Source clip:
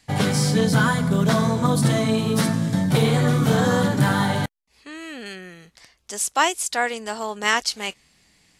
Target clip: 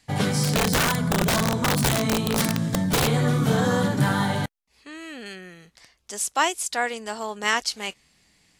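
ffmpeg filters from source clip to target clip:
-filter_complex "[0:a]asettb=1/sr,asplit=3[a][b][c];[a]atrim=end=0.434[d];[b]atrim=start=0.43:end=3.08,asetpts=PTS-STARTPTS,afade=t=in:d=0.004:c=qsin,afade=t=out:st=2.646:d=0.004:c=qsin,aeval=exprs='(mod(4.22*val(0)+1,2)-1)/4.22':c=same[e];[c]atrim=start=3.076[f];[d][e]acrossfade=d=0.004:c1=hsin:c2=qsin[g];[g][f]acrossfade=d=0.004:c1=qsin:c2=hsin,volume=-2.5dB"

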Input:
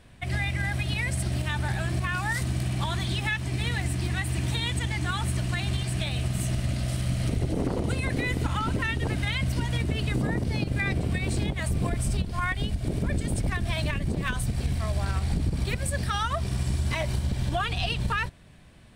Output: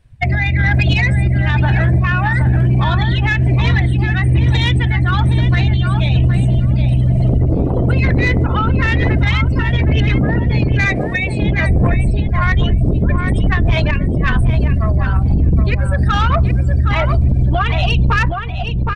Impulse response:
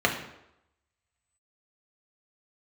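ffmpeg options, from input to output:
-filter_complex "[0:a]asettb=1/sr,asplit=3[a][b][c];[a]atrim=end=10.854[d];[b]atrim=start=10.85:end=11.42,asetpts=PTS-STARTPTS,afade=t=in:d=0.004:c=qsin,afade=t=out:st=0.566:d=0.004:c=qsin,highpass=530[e];[c]atrim=start=11.416[f];[d][e]acrossfade=d=0.004:c1=hsin:c2=qsin[g];[g][f]acrossfade=d=0.004:c1=qsin:c2=hsin,afftdn=nr=30:nf=-34,acrossover=split=4200[h][i];[i]acompressor=threshold=-60dB:ratio=4:attack=1:release=60[j];[h][j]amix=inputs=2:normalize=0,equalizer=f=3.4k:w=4.2:g=-2,acompressor=threshold=-29dB:ratio=3,flanger=delay=0.2:depth=1.4:regen=82:speed=1.6:shape=triangular,tremolo=f=1.1:d=0.5,asoftclip=type=tanh:threshold=-32.5dB,asplit=2[k][l];[l]adelay=768,lowpass=f=2.2k:p=1,volume=-6dB,asplit=2[m][n];[n]adelay=768,lowpass=f=2.2k:p=1,volume=0.15,asplit=2[o][p];[p]adelay=768,lowpass=f=2.2k:p=1,volume=0.15[q];[k][m][o][q]amix=inputs=4:normalize=0,alimiter=level_in=33dB:limit=-1dB:release=50:level=0:latency=1,volume=-6dB"

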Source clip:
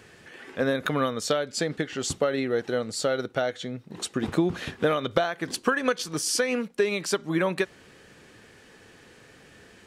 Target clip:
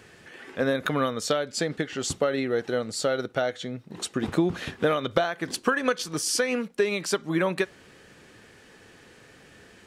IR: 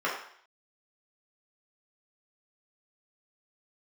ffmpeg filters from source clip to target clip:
-filter_complex "[0:a]asplit=2[a][b];[1:a]atrim=start_sample=2205,atrim=end_sample=3087[c];[b][c]afir=irnorm=-1:irlink=0,volume=-32.5dB[d];[a][d]amix=inputs=2:normalize=0"

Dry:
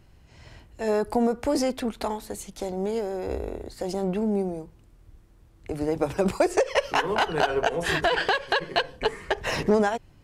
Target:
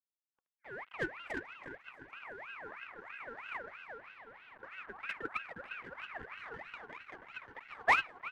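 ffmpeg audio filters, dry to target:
-filter_complex "[0:a]acrossover=split=410|6100[a][b][c];[b]acompressor=threshold=-38dB:ratio=10[d];[a][d][c]amix=inputs=3:normalize=0,equalizer=f=6.5k:w=0.44:g=5.5,aecho=1:1:440|836|1192|1513|1802:0.631|0.398|0.251|0.158|0.1,acrusher=bits=5:mix=0:aa=0.000001,lowshelf=f=98:g=-8,asetrate=54243,aresample=44100,agate=range=-16dB:threshold=-23dB:ratio=16:detection=peak,adynamicsmooth=sensitivity=3.5:basefreq=640,afftfilt=real='re*(1-between(b*sr/4096,200,410))':imag='im*(1-between(b*sr/4096,200,410))':win_size=4096:overlap=0.75,aeval=exprs='val(0)*sin(2*PI*1500*n/s+1500*0.4/3.1*sin(2*PI*3.1*n/s))':c=same,volume=5.5dB"

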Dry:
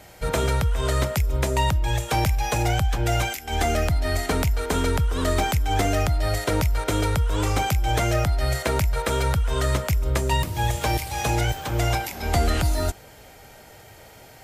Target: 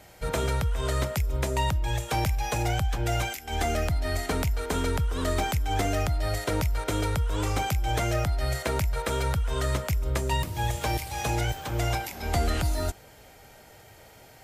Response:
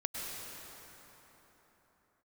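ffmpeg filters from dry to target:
-af "volume=-4.5dB"

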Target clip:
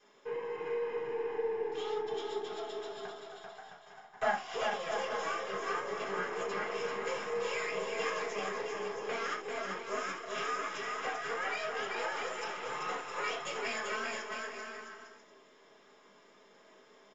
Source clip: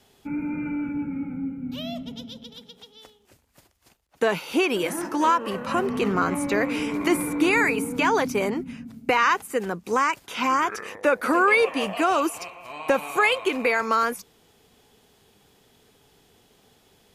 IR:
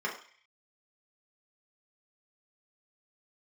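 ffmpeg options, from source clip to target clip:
-filter_complex "[0:a]asettb=1/sr,asplit=3[a][b][c];[a]atrim=end=13.394[d];[b]atrim=start=13.39:end=13.79,asetpts=PTS-STARTPTS,afade=t=in:d=0.004:c=qsin,afade=t=out:st=0.396:d=0.004:c=qsin,aemphasis=mode=production:type=75fm[e];[c]atrim=start=13.786[f];[d][e]acrossfade=d=0.004:c1=hsin:c2=qsin[g];[g][f]acrossfade=d=0.004:c1=qsin:c2=hsin,acrossover=split=4200[h][i];[h]acompressor=threshold=-35dB:ratio=6[j];[j][i]amix=inputs=2:normalize=0,afreqshift=180,asettb=1/sr,asplit=3[k][l][m];[k]atrim=end=2.484[n];[l]atrim=start=2.48:end=4.55,asetpts=PTS-STARTPTS,afade=t=in:d=0.004:c=qsin,afade=t=out:st=2.066:d=0.004:c=qsin,highpass=f=750:t=q:w=8.3[o];[m]atrim=start=4.546[p];[n][o]acrossfade=d=0.004:c1=hsin:c2=qsin[q];[q][p]acrossfade=d=0.004:c1=qsin:c2=hsin,aeval=exprs='max(val(0),0)':c=same,flanger=delay=8.7:depth=6.3:regen=-35:speed=1.9:shape=sinusoidal,aecho=1:1:390|663|854.1|987.9|1082:0.631|0.398|0.251|0.158|0.1[r];[1:a]atrim=start_sample=2205,atrim=end_sample=3969[s];[r][s]afir=irnorm=-1:irlink=0,aresample=16000,aresample=44100"

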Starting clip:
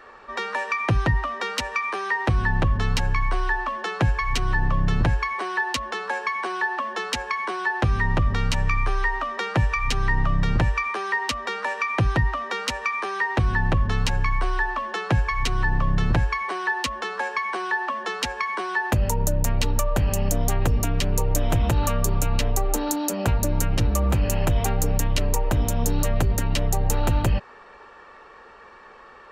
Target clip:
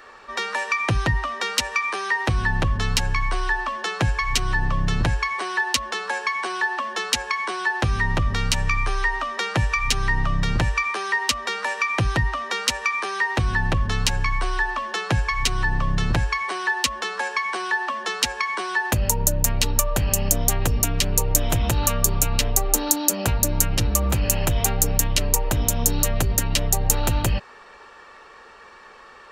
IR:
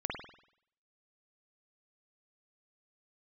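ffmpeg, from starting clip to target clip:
-af "highshelf=f=3k:g=11.5,volume=-1dB"

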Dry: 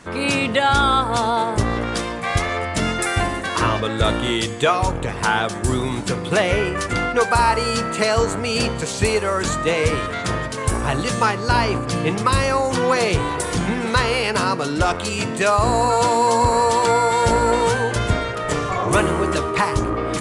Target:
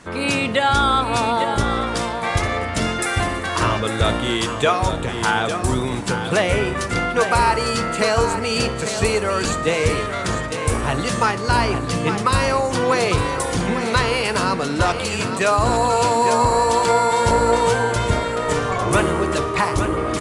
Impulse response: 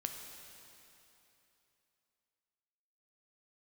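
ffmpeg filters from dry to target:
-filter_complex "[0:a]aecho=1:1:852:0.376,asplit=2[a][b];[1:a]atrim=start_sample=2205,adelay=56[c];[b][c]afir=irnorm=-1:irlink=0,volume=-18.5dB[d];[a][d]amix=inputs=2:normalize=0" -ar 44100 -c:a libmp3lame -b:a 96k

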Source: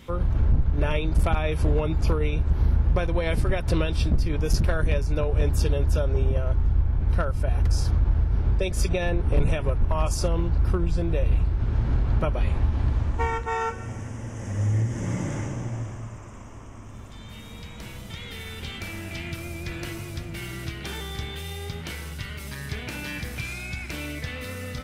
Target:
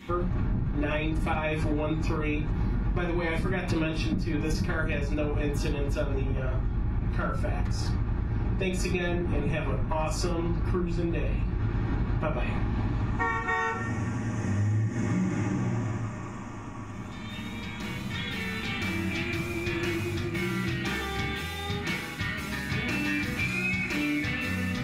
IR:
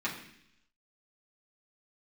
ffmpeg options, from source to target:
-filter_complex "[1:a]atrim=start_sample=2205,afade=t=out:st=0.15:d=0.01,atrim=end_sample=7056[a];[0:a][a]afir=irnorm=-1:irlink=0,acompressor=threshold=-24dB:ratio=6"

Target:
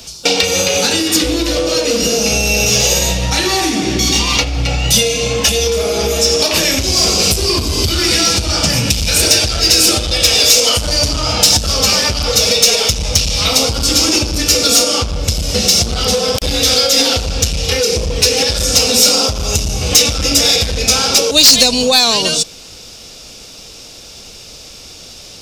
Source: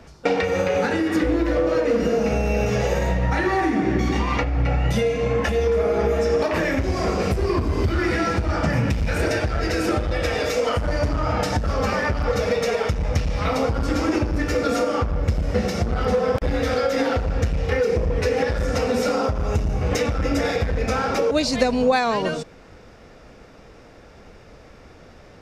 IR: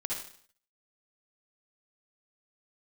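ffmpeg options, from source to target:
-af "aexciter=amount=15.8:drive=1.5:freq=2.8k,acontrast=21,volume=-1dB"

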